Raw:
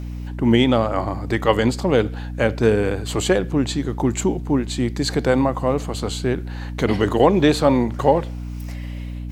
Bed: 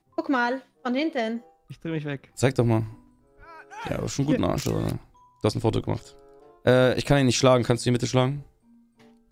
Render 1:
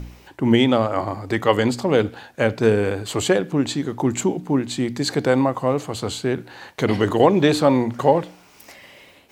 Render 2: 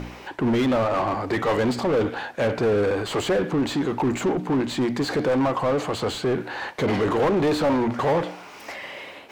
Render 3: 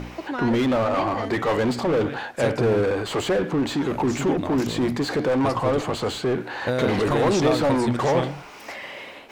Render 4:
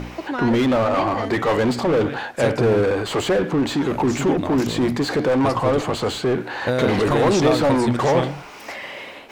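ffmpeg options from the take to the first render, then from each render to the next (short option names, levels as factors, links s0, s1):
-af "bandreject=f=60:t=h:w=4,bandreject=f=120:t=h:w=4,bandreject=f=180:t=h:w=4,bandreject=f=240:t=h:w=4,bandreject=f=300:t=h:w=4"
-filter_complex "[0:a]volume=6.31,asoftclip=hard,volume=0.158,asplit=2[s0][s1];[s1]highpass=f=720:p=1,volume=11.2,asoftclip=type=tanh:threshold=0.158[s2];[s0][s2]amix=inputs=2:normalize=0,lowpass=f=1400:p=1,volume=0.501"
-filter_complex "[1:a]volume=0.501[s0];[0:a][s0]amix=inputs=2:normalize=0"
-af "volume=1.41"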